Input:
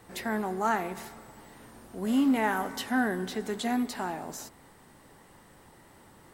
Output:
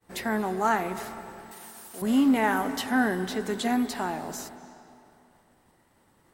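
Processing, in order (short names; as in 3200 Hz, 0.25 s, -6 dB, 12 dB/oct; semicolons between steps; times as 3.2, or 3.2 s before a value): expander -46 dBFS; 1.51–2.02 tilt +4.5 dB/oct; on a send: reverb RT60 2.7 s, pre-delay 0.192 s, DRR 14 dB; on the sum: gain +3 dB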